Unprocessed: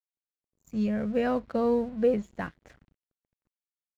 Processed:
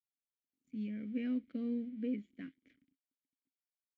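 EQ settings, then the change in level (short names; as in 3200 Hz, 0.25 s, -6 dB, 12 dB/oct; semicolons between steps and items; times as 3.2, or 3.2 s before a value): vowel filter i; 0.0 dB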